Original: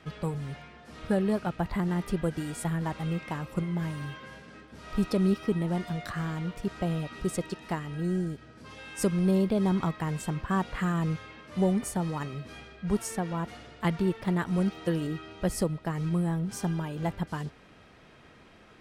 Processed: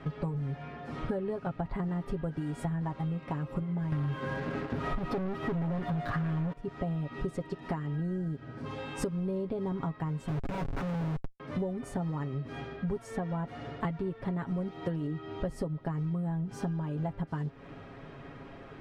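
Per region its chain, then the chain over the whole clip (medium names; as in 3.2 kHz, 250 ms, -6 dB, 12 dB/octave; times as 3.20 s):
3.92–6.53 s: peaking EQ 7.3 kHz -13 dB 0.89 oct + waveshaping leveller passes 5
10.28–11.40 s: AM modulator 57 Hz, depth 20% + Schmitt trigger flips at -37 dBFS + loudspeaker Doppler distortion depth 0.81 ms
whole clip: low-pass 1 kHz 6 dB/octave; comb 7.3 ms, depth 61%; compression 10:1, threshold -39 dBFS; trim +8.5 dB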